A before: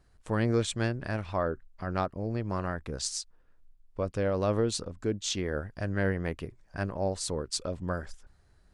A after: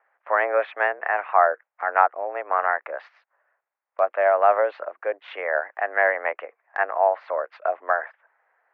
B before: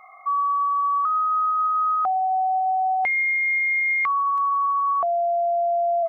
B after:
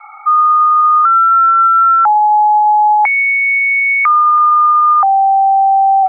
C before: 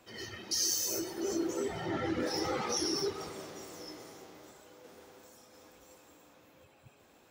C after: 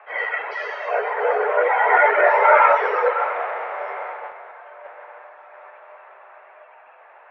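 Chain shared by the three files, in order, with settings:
mistuned SSB +91 Hz 540–2100 Hz; gate -56 dBFS, range -6 dB; normalise peaks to -2 dBFS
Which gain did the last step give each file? +14.5, +12.5, +25.0 dB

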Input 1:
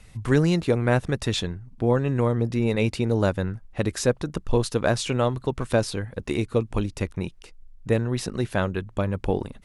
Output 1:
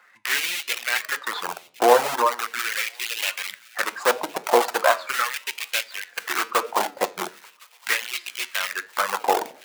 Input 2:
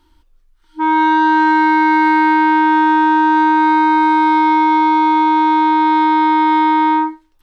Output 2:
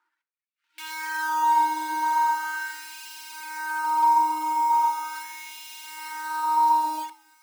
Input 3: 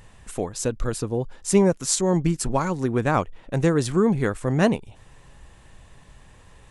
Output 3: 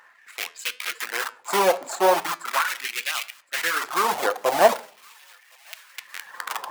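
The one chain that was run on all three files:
median filter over 15 samples; recorder AGC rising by 8.3 dB/s; tilt -2.5 dB/oct; shoebox room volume 880 m³, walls furnished, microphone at 0.86 m; in parallel at -10.5 dB: wrapped overs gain 14 dB; on the sum: high shelf 7100 Hz +5 dB; LFO high-pass sine 0.39 Hz 730–2500 Hz; reverb removal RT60 1.6 s; HPF 240 Hz 12 dB/oct; thin delay 1.064 s, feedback 65%, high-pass 2100 Hz, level -21 dB; flange 0.88 Hz, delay 8 ms, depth 4.5 ms, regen -83%; match loudness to -24 LUFS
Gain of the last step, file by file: +10.0, -7.5, +8.0 dB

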